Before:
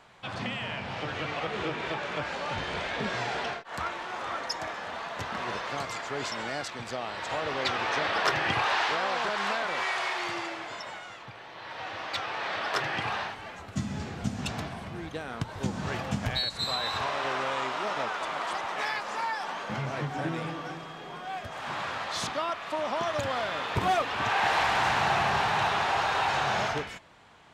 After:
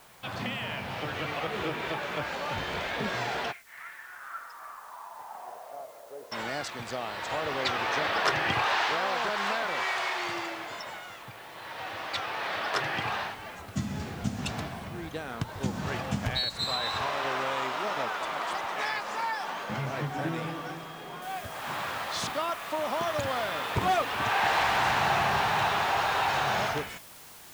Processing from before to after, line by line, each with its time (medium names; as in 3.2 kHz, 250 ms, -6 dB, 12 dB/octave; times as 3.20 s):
3.51–6.31 s: band-pass filter 2.3 kHz -> 480 Hz, Q 5.7
21.22 s: noise floor step -59 dB -50 dB